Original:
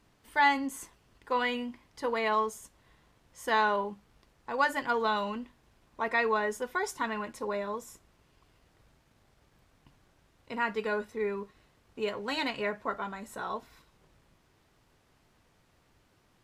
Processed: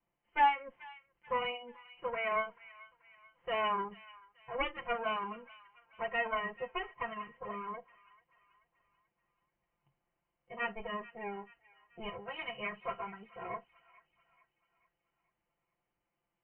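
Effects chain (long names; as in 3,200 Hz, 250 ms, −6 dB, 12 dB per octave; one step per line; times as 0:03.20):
lower of the sound and its delayed copy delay 5.8 ms
Chebyshev low-pass with heavy ripple 3,100 Hz, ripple 6 dB
noise reduction from a noise print of the clip's start 14 dB
delay with a high-pass on its return 435 ms, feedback 46%, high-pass 1,500 Hz, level −16 dB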